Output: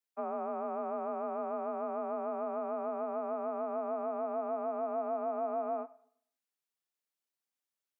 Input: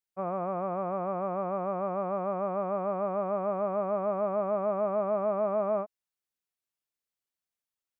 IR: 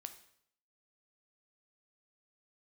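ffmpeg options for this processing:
-filter_complex "[0:a]highpass=150,acrossover=split=190|680[s0][s1][s2];[s0]acompressor=threshold=0.002:ratio=4[s3];[s1]acompressor=threshold=0.02:ratio=4[s4];[s2]acompressor=threshold=0.00891:ratio=4[s5];[s3][s4][s5]amix=inputs=3:normalize=0,afreqshift=49,asplit=2[s6][s7];[1:a]atrim=start_sample=2205[s8];[s7][s8]afir=irnorm=-1:irlink=0,volume=1.12[s9];[s6][s9]amix=inputs=2:normalize=0,volume=0.531"

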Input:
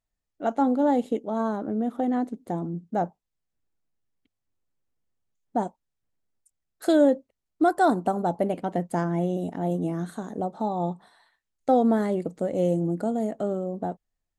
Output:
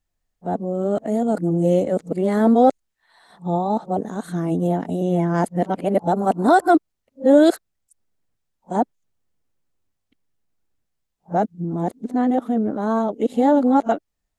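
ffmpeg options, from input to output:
-af "areverse,volume=2"

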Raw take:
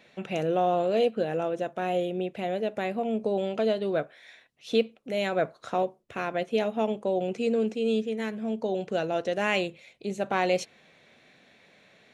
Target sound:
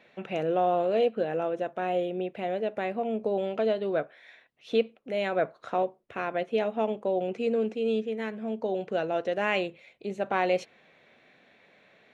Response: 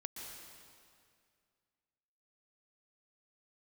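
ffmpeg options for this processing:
-af "bass=f=250:g=-5,treble=f=4000:g=-12"

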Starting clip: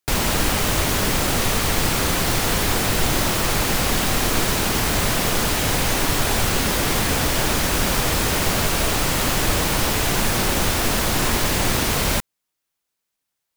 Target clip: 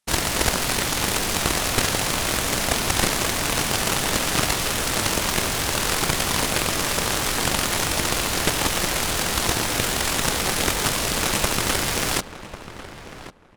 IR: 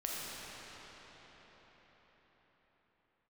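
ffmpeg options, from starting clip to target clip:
-filter_complex "[0:a]asetrate=24750,aresample=44100,atempo=1.7818,aeval=exprs='0.473*(cos(1*acos(clip(val(0)/0.473,-1,1)))-cos(1*PI/2))+0.119*(cos(3*acos(clip(val(0)/0.473,-1,1)))-cos(3*PI/2))+0.0841*(cos(7*acos(clip(val(0)/0.473,-1,1)))-cos(7*PI/2))':c=same,asplit=2[s0][s1];[s1]adelay=1096,lowpass=f=1900:p=1,volume=0.237,asplit=2[s2][s3];[s3]adelay=1096,lowpass=f=1900:p=1,volume=0.19[s4];[s0][s2][s4]amix=inputs=3:normalize=0,volume=1.41"

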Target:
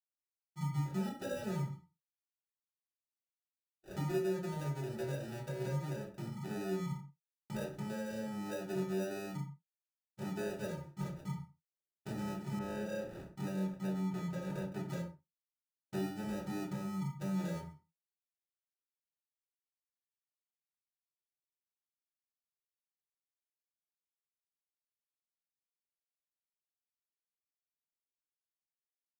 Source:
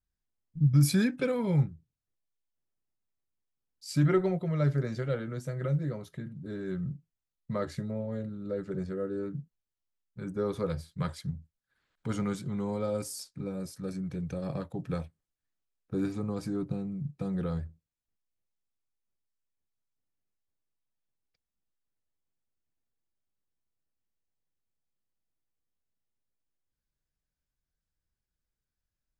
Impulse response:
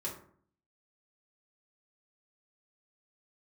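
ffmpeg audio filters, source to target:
-filter_complex "[0:a]agate=range=0.0224:threshold=0.00631:ratio=3:detection=peak,highpass=f=130:w=0.5412,highpass=f=130:w=1.3066,highshelf=f=4400:g=-9.5,acompressor=threshold=0.0126:ratio=5,acrusher=samples=41:mix=1:aa=0.000001[s0];[1:a]atrim=start_sample=2205,atrim=end_sample=6174[s1];[s0][s1]afir=irnorm=-1:irlink=0,asettb=1/sr,asplit=3[s2][s3][s4];[s2]atrim=end=12.594[s5];[s3]atrim=start=12.59:end=14.89,asetpts=PTS-STARTPTS,afade=t=in:d=0.004:c=qsin,afade=t=out:st=2.296:d=0.004:c=qsin,adynamicequalizer=threshold=0.00112:dfrequency=3300:dqfactor=0.7:tfrequency=3300:tqfactor=0.7:attack=5:release=100:ratio=0.375:range=2:mode=cutabove:tftype=highshelf[s6];[s4]atrim=start=14.886[s7];[s5][s6]acrossfade=d=0.004:c1=hsin:c2=qsin[s8];[s8][s7]acrossfade=d=0.004:c1=qsin:c2=hsin,volume=0.794"

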